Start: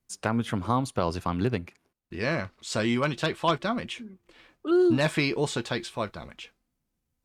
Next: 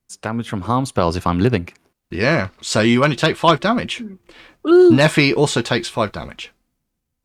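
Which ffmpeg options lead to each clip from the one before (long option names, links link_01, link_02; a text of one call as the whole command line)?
ffmpeg -i in.wav -af "dynaudnorm=framelen=120:gausssize=13:maxgain=9.5dB,volume=2.5dB" out.wav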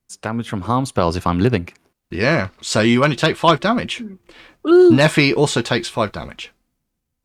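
ffmpeg -i in.wav -af anull out.wav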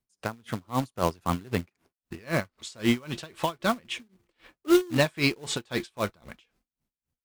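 ffmpeg -i in.wav -filter_complex "[0:a]acrossover=split=1900[link_01][link_02];[link_01]acrusher=bits=3:mode=log:mix=0:aa=0.000001[link_03];[link_03][link_02]amix=inputs=2:normalize=0,aeval=exprs='val(0)*pow(10,-28*(0.5-0.5*cos(2*PI*3.8*n/s))/20)':channel_layout=same,volume=-6dB" out.wav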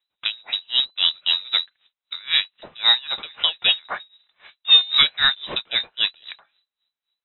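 ffmpeg -i in.wav -af "acontrast=89,lowpass=frequency=3400:width_type=q:width=0.5098,lowpass=frequency=3400:width_type=q:width=0.6013,lowpass=frequency=3400:width_type=q:width=0.9,lowpass=frequency=3400:width_type=q:width=2.563,afreqshift=-4000" out.wav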